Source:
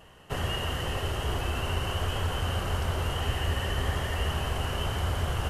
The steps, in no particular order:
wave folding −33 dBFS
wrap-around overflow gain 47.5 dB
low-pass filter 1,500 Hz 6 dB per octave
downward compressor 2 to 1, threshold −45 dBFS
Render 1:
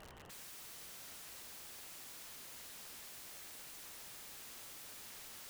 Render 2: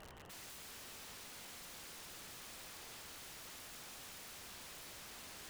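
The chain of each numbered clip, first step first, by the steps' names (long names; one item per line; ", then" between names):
low-pass filter, then wave folding, then wrap-around overflow, then downward compressor
low-pass filter, then wave folding, then downward compressor, then wrap-around overflow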